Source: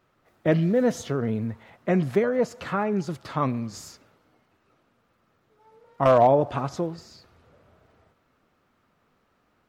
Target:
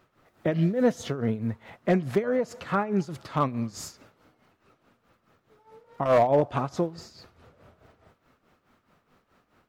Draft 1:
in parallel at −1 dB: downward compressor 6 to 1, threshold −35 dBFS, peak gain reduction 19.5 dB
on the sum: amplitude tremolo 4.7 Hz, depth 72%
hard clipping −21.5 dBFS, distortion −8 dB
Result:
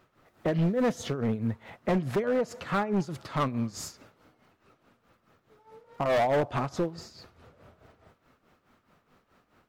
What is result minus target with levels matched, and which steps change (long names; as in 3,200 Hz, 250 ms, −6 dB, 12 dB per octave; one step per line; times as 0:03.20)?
hard clipping: distortion +12 dB
change: hard clipping −13.5 dBFS, distortion −20 dB